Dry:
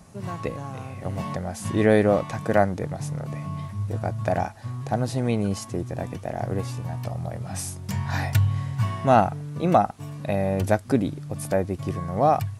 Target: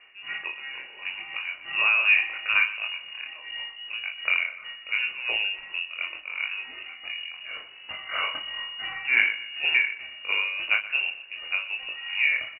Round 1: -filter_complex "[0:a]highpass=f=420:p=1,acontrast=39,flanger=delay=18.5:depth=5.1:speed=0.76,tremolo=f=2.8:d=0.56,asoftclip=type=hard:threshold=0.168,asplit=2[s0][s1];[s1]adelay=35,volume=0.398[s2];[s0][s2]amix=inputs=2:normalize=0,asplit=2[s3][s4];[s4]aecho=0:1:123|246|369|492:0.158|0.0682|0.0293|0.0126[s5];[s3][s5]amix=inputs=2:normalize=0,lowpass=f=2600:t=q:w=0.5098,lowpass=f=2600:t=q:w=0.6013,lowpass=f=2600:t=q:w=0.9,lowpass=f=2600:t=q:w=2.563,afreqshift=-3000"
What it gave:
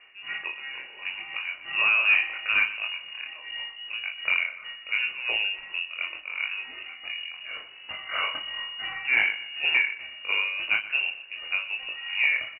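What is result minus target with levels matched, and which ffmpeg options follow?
hard clipper: distortion +28 dB
-filter_complex "[0:a]highpass=f=420:p=1,acontrast=39,flanger=delay=18.5:depth=5.1:speed=0.76,tremolo=f=2.8:d=0.56,asoftclip=type=hard:threshold=0.422,asplit=2[s0][s1];[s1]adelay=35,volume=0.398[s2];[s0][s2]amix=inputs=2:normalize=0,asplit=2[s3][s4];[s4]aecho=0:1:123|246|369|492:0.158|0.0682|0.0293|0.0126[s5];[s3][s5]amix=inputs=2:normalize=0,lowpass=f=2600:t=q:w=0.5098,lowpass=f=2600:t=q:w=0.6013,lowpass=f=2600:t=q:w=0.9,lowpass=f=2600:t=q:w=2.563,afreqshift=-3000"

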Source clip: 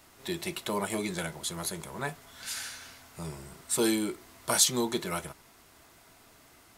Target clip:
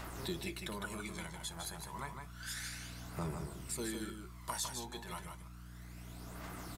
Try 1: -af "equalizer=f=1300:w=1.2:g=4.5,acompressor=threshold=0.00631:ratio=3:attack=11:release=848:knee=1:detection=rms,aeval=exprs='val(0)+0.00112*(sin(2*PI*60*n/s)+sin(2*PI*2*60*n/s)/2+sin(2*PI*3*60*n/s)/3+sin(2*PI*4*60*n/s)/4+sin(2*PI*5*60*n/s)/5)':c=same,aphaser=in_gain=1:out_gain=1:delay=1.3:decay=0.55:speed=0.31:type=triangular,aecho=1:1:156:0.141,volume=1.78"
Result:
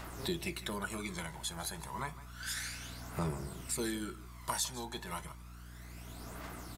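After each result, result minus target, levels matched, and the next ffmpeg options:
echo-to-direct -11 dB; compression: peak gain reduction -4.5 dB
-af "equalizer=f=1300:w=1.2:g=4.5,acompressor=threshold=0.00631:ratio=3:attack=11:release=848:knee=1:detection=rms,aeval=exprs='val(0)+0.00112*(sin(2*PI*60*n/s)+sin(2*PI*2*60*n/s)/2+sin(2*PI*3*60*n/s)/3+sin(2*PI*4*60*n/s)/4+sin(2*PI*5*60*n/s)/5)':c=same,aphaser=in_gain=1:out_gain=1:delay=1.3:decay=0.55:speed=0.31:type=triangular,aecho=1:1:156:0.501,volume=1.78"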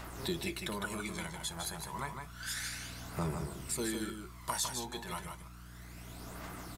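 compression: peak gain reduction -4.5 dB
-af "equalizer=f=1300:w=1.2:g=4.5,acompressor=threshold=0.00299:ratio=3:attack=11:release=848:knee=1:detection=rms,aeval=exprs='val(0)+0.00112*(sin(2*PI*60*n/s)+sin(2*PI*2*60*n/s)/2+sin(2*PI*3*60*n/s)/3+sin(2*PI*4*60*n/s)/4+sin(2*PI*5*60*n/s)/5)':c=same,aphaser=in_gain=1:out_gain=1:delay=1.3:decay=0.55:speed=0.31:type=triangular,aecho=1:1:156:0.501,volume=1.78"

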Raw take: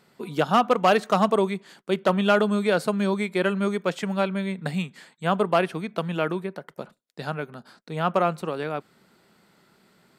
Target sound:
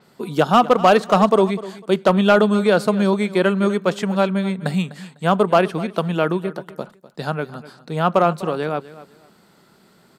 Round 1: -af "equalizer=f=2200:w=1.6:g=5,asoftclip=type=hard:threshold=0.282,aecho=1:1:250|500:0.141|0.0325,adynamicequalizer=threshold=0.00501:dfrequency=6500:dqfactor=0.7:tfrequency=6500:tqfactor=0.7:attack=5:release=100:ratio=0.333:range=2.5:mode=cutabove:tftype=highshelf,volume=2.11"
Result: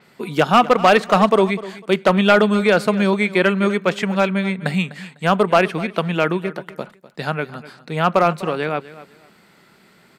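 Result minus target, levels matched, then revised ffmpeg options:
2 kHz band +4.0 dB
-af "equalizer=f=2200:w=1.6:g=-4.5,asoftclip=type=hard:threshold=0.282,aecho=1:1:250|500:0.141|0.0325,adynamicequalizer=threshold=0.00501:dfrequency=6500:dqfactor=0.7:tfrequency=6500:tqfactor=0.7:attack=5:release=100:ratio=0.333:range=2.5:mode=cutabove:tftype=highshelf,volume=2.11"

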